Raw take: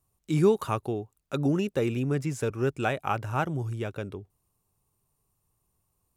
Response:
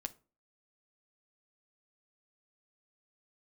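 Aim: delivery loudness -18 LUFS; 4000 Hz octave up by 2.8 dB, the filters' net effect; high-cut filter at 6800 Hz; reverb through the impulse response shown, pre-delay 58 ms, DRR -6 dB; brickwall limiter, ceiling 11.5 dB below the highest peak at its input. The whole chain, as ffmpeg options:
-filter_complex "[0:a]lowpass=6.8k,equalizer=f=4k:t=o:g=4,alimiter=limit=-22.5dB:level=0:latency=1,asplit=2[a][b];[1:a]atrim=start_sample=2205,adelay=58[c];[b][c]afir=irnorm=-1:irlink=0,volume=8dB[d];[a][d]amix=inputs=2:normalize=0,volume=8dB"

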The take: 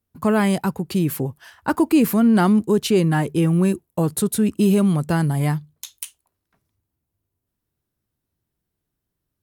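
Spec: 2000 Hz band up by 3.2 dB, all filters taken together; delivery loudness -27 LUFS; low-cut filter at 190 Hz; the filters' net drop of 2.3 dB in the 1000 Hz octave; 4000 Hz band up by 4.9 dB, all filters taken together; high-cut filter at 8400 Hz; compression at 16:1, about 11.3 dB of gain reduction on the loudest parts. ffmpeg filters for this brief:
-af "highpass=190,lowpass=8.4k,equalizer=f=1k:t=o:g=-4.5,equalizer=f=2k:t=o:g=5,equalizer=f=4k:t=o:g=5,acompressor=threshold=-24dB:ratio=16,volume=3dB"

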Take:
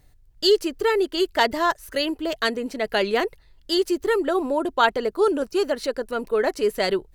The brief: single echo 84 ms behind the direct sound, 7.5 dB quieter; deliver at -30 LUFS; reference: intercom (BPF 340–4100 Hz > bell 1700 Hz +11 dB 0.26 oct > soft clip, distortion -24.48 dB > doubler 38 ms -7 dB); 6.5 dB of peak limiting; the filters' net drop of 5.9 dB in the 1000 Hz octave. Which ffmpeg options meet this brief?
-filter_complex "[0:a]equalizer=f=1k:t=o:g=-8.5,alimiter=limit=-15.5dB:level=0:latency=1,highpass=340,lowpass=4.1k,equalizer=f=1.7k:t=o:w=0.26:g=11,aecho=1:1:84:0.422,asoftclip=threshold=-13.5dB,asplit=2[a][b];[b]adelay=38,volume=-7dB[c];[a][c]amix=inputs=2:normalize=0,volume=-4dB"

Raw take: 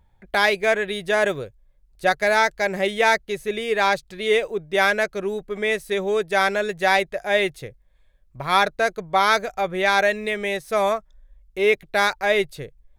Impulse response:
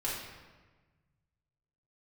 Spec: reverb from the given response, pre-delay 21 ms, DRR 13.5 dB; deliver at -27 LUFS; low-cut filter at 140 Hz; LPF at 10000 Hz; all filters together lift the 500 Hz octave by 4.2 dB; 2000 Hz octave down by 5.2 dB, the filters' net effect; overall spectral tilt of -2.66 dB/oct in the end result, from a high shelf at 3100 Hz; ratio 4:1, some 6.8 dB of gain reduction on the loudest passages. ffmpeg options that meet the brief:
-filter_complex "[0:a]highpass=140,lowpass=10k,equalizer=f=500:t=o:g=6,equalizer=f=2k:t=o:g=-5,highshelf=f=3.1k:g=-6.5,acompressor=threshold=-19dB:ratio=4,asplit=2[a][b];[1:a]atrim=start_sample=2205,adelay=21[c];[b][c]afir=irnorm=-1:irlink=0,volume=-18.5dB[d];[a][d]amix=inputs=2:normalize=0,volume=-3dB"

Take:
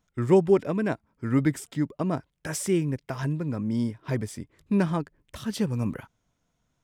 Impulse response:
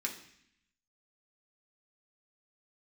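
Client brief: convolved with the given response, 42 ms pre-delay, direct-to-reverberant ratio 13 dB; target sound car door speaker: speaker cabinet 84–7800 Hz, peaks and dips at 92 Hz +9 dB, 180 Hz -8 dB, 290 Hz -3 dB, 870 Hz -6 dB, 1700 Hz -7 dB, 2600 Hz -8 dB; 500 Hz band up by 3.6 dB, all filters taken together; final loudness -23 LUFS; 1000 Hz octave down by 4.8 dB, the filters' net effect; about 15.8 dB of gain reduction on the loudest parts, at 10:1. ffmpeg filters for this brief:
-filter_complex "[0:a]equalizer=f=500:t=o:g=7.5,equalizer=f=1k:t=o:g=-5.5,acompressor=threshold=-26dB:ratio=10,asplit=2[a][b];[1:a]atrim=start_sample=2205,adelay=42[c];[b][c]afir=irnorm=-1:irlink=0,volume=-15dB[d];[a][d]amix=inputs=2:normalize=0,highpass=84,equalizer=f=92:t=q:w=4:g=9,equalizer=f=180:t=q:w=4:g=-8,equalizer=f=290:t=q:w=4:g=-3,equalizer=f=870:t=q:w=4:g=-6,equalizer=f=1.7k:t=q:w=4:g=-7,equalizer=f=2.6k:t=q:w=4:g=-8,lowpass=f=7.8k:w=0.5412,lowpass=f=7.8k:w=1.3066,volume=11.5dB"

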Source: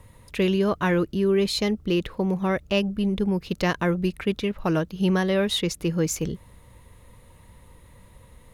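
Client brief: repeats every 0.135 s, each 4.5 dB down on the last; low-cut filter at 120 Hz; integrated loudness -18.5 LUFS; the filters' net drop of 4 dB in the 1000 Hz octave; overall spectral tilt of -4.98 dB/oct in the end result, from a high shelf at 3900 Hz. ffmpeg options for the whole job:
-af "highpass=120,equalizer=f=1k:t=o:g=-5.5,highshelf=f=3.9k:g=3,aecho=1:1:135|270|405|540|675|810|945|1080|1215:0.596|0.357|0.214|0.129|0.0772|0.0463|0.0278|0.0167|0.01,volume=5dB"

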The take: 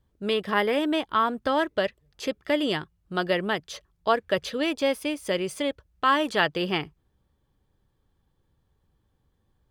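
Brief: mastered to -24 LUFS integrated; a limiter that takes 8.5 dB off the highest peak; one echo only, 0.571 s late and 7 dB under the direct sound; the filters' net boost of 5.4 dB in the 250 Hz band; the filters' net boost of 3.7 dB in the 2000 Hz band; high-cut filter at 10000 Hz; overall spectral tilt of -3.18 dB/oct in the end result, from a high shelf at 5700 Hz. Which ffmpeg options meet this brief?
-af "lowpass=10k,equalizer=f=250:t=o:g=7,equalizer=f=2k:t=o:g=5,highshelf=f=5.7k:g=-5.5,alimiter=limit=-14dB:level=0:latency=1,aecho=1:1:571:0.447,volume=1dB"

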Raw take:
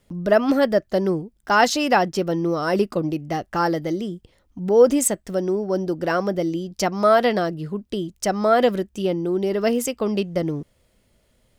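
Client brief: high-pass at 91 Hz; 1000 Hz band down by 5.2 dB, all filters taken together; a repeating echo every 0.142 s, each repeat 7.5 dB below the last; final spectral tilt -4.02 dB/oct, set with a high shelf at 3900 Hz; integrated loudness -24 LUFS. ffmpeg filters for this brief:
-af "highpass=91,equalizer=f=1k:t=o:g=-8.5,highshelf=f=3.9k:g=6,aecho=1:1:142|284|426|568|710:0.422|0.177|0.0744|0.0312|0.0131,volume=-2dB"

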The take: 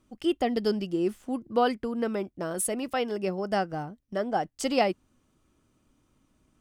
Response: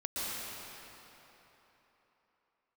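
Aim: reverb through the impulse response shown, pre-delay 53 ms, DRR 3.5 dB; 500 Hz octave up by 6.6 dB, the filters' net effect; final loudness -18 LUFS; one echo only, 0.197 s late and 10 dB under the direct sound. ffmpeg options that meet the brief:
-filter_complex "[0:a]equalizer=f=500:t=o:g=8,aecho=1:1:197:0.316,asplit=2[a][b];[1:a]atrim=start_sample=2205,adelay=53[c];[b][c]afir=irnorm=-1:irlink=0,volume=-9dB[d];[a][d]amix=inputs=2:normalize=0,volume=5dB"

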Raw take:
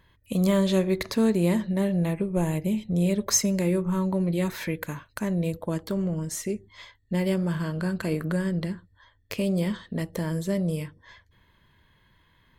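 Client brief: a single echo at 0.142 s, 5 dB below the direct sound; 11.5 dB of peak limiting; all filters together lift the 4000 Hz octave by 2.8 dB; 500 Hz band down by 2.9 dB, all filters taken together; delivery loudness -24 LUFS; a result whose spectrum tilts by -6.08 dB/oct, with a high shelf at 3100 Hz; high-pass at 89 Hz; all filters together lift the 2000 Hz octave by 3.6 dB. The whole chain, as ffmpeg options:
-af "highpass=89,equalizer=f=500:t=o:g=-4,equalizer=f=2k:t=o:g=5,highshelf=f=3.1k:g=-7,equalizer=f=4k:t=o:g=8,alimiter=limit=-24dB:level=0:latency=1,aecho=1:1:142:0.562,volume=7dB"

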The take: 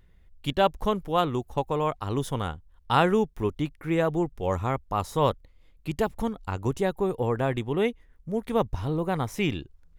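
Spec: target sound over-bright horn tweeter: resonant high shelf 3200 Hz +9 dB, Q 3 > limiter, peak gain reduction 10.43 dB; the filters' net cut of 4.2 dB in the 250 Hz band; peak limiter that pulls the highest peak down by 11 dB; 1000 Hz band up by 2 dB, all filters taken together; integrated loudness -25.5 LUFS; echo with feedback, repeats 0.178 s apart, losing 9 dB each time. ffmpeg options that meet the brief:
-af "equalizer=f=250:t=o:g=-6.5,equalizer=f=1k:t=o:g=4,alimiter=limit=-17.5dB:level=0:latency=1,highshelf=f=3.2k:t=q:w=3:g=9,aecho=1:1:178|356|534|712:0.355|0.124|0.0435|0.0152,volume=8.5dB,alimiter=limit=-15dB:level=0:latency=1"

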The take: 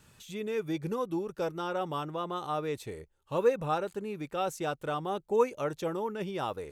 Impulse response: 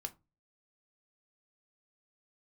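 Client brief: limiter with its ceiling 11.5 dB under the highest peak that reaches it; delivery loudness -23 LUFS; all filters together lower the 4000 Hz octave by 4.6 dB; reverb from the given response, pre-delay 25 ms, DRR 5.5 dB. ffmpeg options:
-filter_complex "[0:a]equalizer=f=4k:t=o:g=-6,alimiter=level_in=1dB:limit=-24dB:level=0:latency=1,volume=-1dB,asplit=2[a][b];[1:a]atrim=start_sample=2205,adelay=25[c];[b][c]afir=irnorm=-1:irlink=0,volume=-3dB[d];[a][d]amix=inputs=2:normalize=0,volume=11.5dB"

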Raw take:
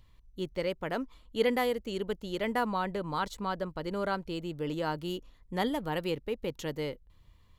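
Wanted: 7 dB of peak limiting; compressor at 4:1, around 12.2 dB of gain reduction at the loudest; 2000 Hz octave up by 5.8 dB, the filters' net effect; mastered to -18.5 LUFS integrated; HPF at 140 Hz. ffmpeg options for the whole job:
-af "highpass=140,equalizer=f=2k:t=o:g=7,acompressor=threshold=-36dB:ratio=4,volume=23dB,alimiter=limit=-7dB:level=0:latency=1"

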